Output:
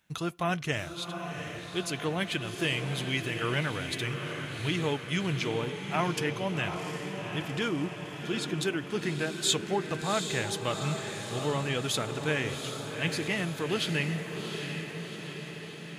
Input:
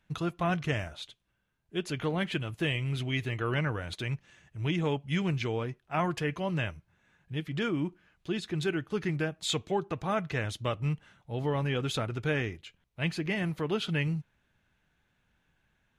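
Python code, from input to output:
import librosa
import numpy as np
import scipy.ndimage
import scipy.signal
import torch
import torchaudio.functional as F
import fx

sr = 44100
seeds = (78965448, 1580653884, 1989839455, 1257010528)

y = fx.highpass(x, sr, hz=140.0, slope=6)
y = fx.high_shelf(y, sr, hz=4800.0, db=11.5)
y = fx.echo_diffused(y, sr, ms=758, feedback_pct=63, wet_db=-6.5)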